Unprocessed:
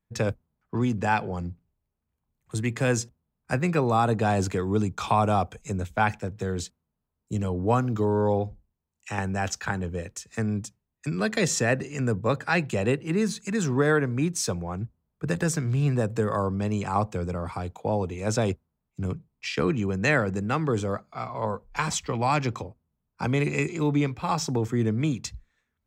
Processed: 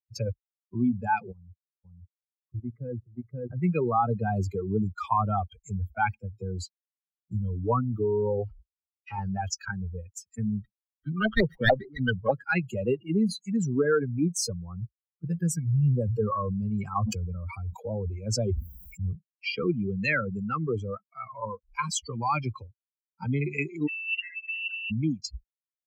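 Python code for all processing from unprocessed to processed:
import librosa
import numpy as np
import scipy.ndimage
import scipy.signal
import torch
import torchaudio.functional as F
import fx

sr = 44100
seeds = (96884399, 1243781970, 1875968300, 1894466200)

y = fx.chain(x, sr, fx.echo_single(ms=526, db=-3.0),
    fx.level_steps(step_db=14),
    fx.lowpass(hz=1200.0, slope=12), at=(1.32, 3.57))
y = fx.chain(y, sr, fx.delta_mod(bps=32000, step_db=-39.0),
    fx.peak_eq(hz=1200.0, db=6.0, octaves=2.1),
    fx.gate_hold(open_db=-31.0, close_db=-36.0, hold_ms=71.0, range_db=-21, attack_ms=1.4, release_ms=100.0), at=(8.38, 9.41))
y = fx.chain(y, sr, fx.filter_lfo_lowpass(shape='saw_up', hz=6.8, low_hz=710.0, high_hz=2100.0, q=6.6),
    fx.running_max(window=9), at=(10.52, 12.31))
y = fx.chain(y, sr, fx.notch(hz=880.0, q=15.0),
    fx.sustainer(db_per_s=39.0), at=(15.75, 19.15))
y = fx.chain(y, sr, fx.cheby1_bandstop(low_hz=180.0, high_hz=660.0, order=5),
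    fx.over_compress(threshold_db=-36.0, ratio=-1.0),
    fx.freq_invert(carrier_hz=2800), at=(23.87, 24.91))
y = fx.bin_expand(y, sr, power=3.0)
y = fx.high_shelf(y, sr, hz=3900.0, db=-9.5)
y = fx.env_flatten(y, sr, amount_pct=50)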